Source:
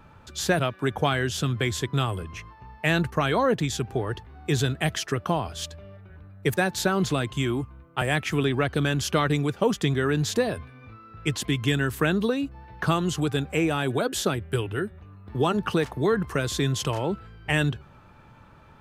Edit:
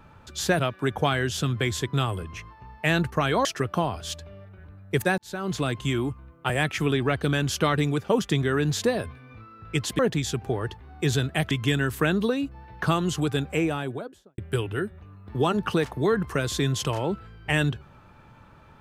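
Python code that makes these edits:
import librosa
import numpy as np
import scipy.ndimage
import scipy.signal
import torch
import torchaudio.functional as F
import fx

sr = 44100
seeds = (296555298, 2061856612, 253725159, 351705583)

y = fx.studio_fade_out(x, sr, start_s=13.46, length_s=0.92)
y = fx.edit(y, sr, fx.move(start_s=3.45, length_s=1.52, to_s=11.51),
    fx.fade_in_span(start_s=6.7, length_s=0.53), tone=tone)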